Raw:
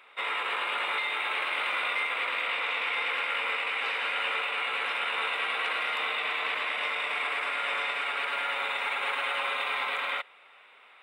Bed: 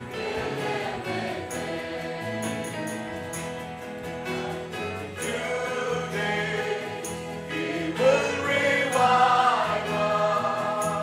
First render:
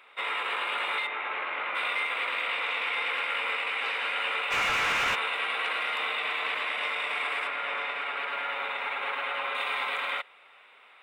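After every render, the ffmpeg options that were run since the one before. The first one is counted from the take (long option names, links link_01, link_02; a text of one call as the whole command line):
ffmpeg -i in.wav -filter_complex "[0:a]asplit=3[link_01][link_02][link_03];[link_01]afade=type=out:start_time=1.06:duration=0.02[link_04];[link_02]lowpass=2100,afade=type=in:start_time=1.06:duration=0.02,afade=type=out:start_time=1.74:duration=0.02[link_05];[link_03]afade=type=in:start_time=1.74:duration=0.02[link_06];[link_04][link_05][link_06]amix=inputs=3:normalize=0,asplit=3[link_07][link_08][link_09];[link_07]afade=type=out:start_time=4.5:duration=0.02[link_10];[link_08]asplit=2[link_11][link_12];[link_12]highpass=frequency=720:poles=1,volume=22dB,asoftclip=type=tanh:threshold=-19dB[link_13];[link_11][link_13]amix=inputs=2:normalize=0,lowpass=frequency=2800:poles=1,volume=-6dB,afade=type=in:start_time=4.5:duration=0.02,afade=type=out:start_time=5.14:duration=0.02[link_14];[link_09]afade=type=in:start_time=5.14:duration=0.02[link_15];[link_10][link_14][link_15]amix=inputs=3:normalize=0,asettb=1/sr,asplit=3[link_16][link_17][link_18];[link_16]atrim=end=7.474[link_19];[link_17]atrim=start=7.47:end=9.55,asetpts=PTS-STARTPTS,afade=type=in:duration=0.004:curve=qsin,afade=type=out:start_time=2.076:duration=0.004:curve=qsin,equalizer=frequency=10000:width=0.45:gain=-12.5[link_20];[link_18]atrim=start=9.546[link_21];[link_19][link_20]acrossfade=duration=0.004:curve1=hsin:curve2=qsin[link_22];[link_22][link_21]acrossfade=duration=0.004:curve1=qsin:curve2=hsin" out.wav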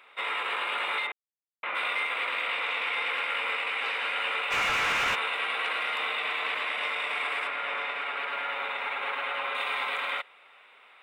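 ffmpeg -i in.wav -filter_complex "[0:a]asplit=3[link_01][link_02][link_03];[link_01]atrim=end=1.12,asetpts=PTS-STARTPTS,afade=type=out:start_time=1.116:duration=0.004:curve=hsin[link_04];[link_02]atrim=start=1.12:end=1.63,asetpts=PTS-STARTPTS,volume=0[link_05];[link_03]atrim=start=1.63,asetpts=PTS-STARTPTS,afade=type=in:duration=0.004:curve=hsin[link_06];[link_04][link_05][link_06]concat=n=3:v=0:a=1" out.wav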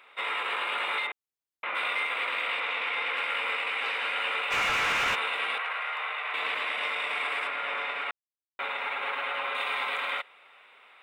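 ffmpeg -i in.wav -filter_complex "[0:a]asettb=1/sr,asplit=3[link_01][link_02][link_03];[link_01]atrim=end=2.604[link_04];[link_02]atrim=start=2.6:end=3.17,asetpts=PTS-STARTPTS,afade=type=in:duration=0.004:curve=qsin,afade=type=out:start_time=0.566:duration=0.004:curve=qsin,highshelf=frequency=7400:gain=-8.5[link_05];[link_03]atrim=start=3.166[link_06];[link_04][link_05]acrossfade=duration=0.004:curve1=hsin:curve2=qsin[link_07];[link_07][link_06]acrossfade=duration=0.004:curve1=qsin:curve2=hsin,asettb=1/sr,asplit=3[link_08][link_09][link_10];[link_08]atrim=end=5.584[link_11];[link_09]atrim=start=5.58:end=6.34,asetpts=PTS-STARTPTS,afade=type=in:duration=0.004:curve=qsin,afade=type=out:start_time=0.756:duration=0.004:curve=qsin,acrossover=split=540 2500:gain=0.0708 1 0.251[link_12][link_13][link_14];[link_12][link_13][link_14]amix=inputs=3:normalize=0[link_15];[link_10]atrim=start=6.336[link_16];[link_11][link_15]acrossfade=duration=0.004:curve1=hsin:curve2=qsin[link_17];[link_17][link_16]acrossfade=duration=0.004:curve1=qsin:curve2=hsin,asplit=3[link_18][link_19][link_20];[link_18]atrim=end=8.11,asetpts=PTS-STARTPTS,afade=type=out:start_time=8.106:duration=0.004:curve=hsin[link_21];[link_19]atrim=start=8.11:end=8.59,asetpts=PTS-STARTPTS,volume=0[link_22];[link_20]atrim=start=8.59,asetpts=PTS-STARTPTS,afade=type=in:duration=0.004:curve=hsin[link_23];[link_21][link_22][link_23]concat=n=3:v=0:a=1" out.wav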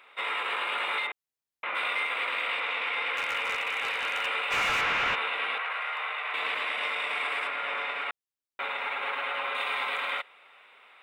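ffmpeg -i in.wav -filter_complex "[0:a]asettb=1/sr,asplit=3[link_01][link_02][link_03];[link_01]atrim=end=3.164[link_04];[link_02]atrim=start=3.16:end=4.26,asetpts=PTS-STARTPTS,afade=type=in:duration=0.004:curve=qsin,afade=type=out:start_time=1.096:duration=0.004:curve=qsin,aeval=exprs='0.0708*(abs(mod(val(0)/0.0708+3,4)-2)-1)':channel_layout=same[link_05];[link_03]atrim=start=4.256[link_06];[link_04][link_05]acrossfade=duration=0.004:curve1=hsin:curve2=qsin[link_07];[link_07][link_06]acrossfade=duration=0.004:curve1=qsin:curve2=hsin,asettb=1/sr,asplit=3[link_08][link_09][link_10];[link_08]atrim=end=4.814[link_11];[link_09]atrim=start=4.81:end=5.72,asetpts=PTS-STARTPTS,afade=type=in:duration=0.004:curve=qsin,afade=type=out:start_time=0.906:duration=0.004:curve=qsin,acrossover=split=4400[link_12][link_13];[link_13]acompressor=threshold=-56dB:ratio=4:attack=1:release=60[link_14];[link_12][link_14]amix=inputs=2:normalize=0[link_15];[link_10]atrim=start=5.716[link_16];[link_11][link_15]acrossfade=duration=0.004:curve1=hsin:curve2=qsin[link_17];[link_17][link_16]acrossfade=duration=0.004:curve1=qsin:curve2=hsin" out.wav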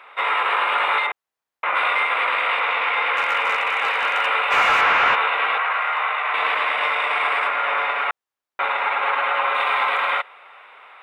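ffmpeg -i in.wav -af "equalizer=frequency=970:width_type=o:width=2.8:gain=13.5" out.wav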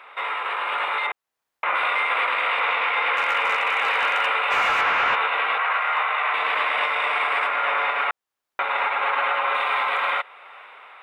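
ffmpeg -i in.wav -af "alimiter=limit=-18dB:level=0:latency=1:release=405,dynaudnorm=framelen=200:gausssize=9:maxgain=5dB" out.wav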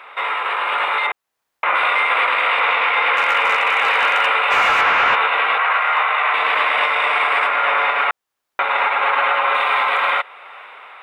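ffmpeg -i in.wav -af "volume=5.5dB" out.wav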